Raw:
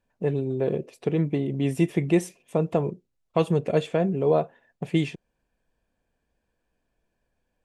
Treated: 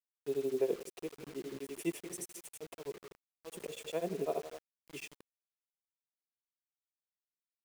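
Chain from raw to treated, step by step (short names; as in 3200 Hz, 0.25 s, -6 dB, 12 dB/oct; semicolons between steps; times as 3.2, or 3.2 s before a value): HPF 160 Hz 24 dB/oct; limiter -18 dBFS, peak gain reduction 9 dB; tilt +3.5 dB/oct; auto swell 0.215 s; echo 0.155 s -14 dB; grains 0.1 s, grains 12/s, pitch spread up and down by 0 st; fifteen-band EQ 400 Hz +8 dB, 1600 Hz -7 dB, 4000 Hz -7 dB; bit-crush 8-bit; gain -3.5 dB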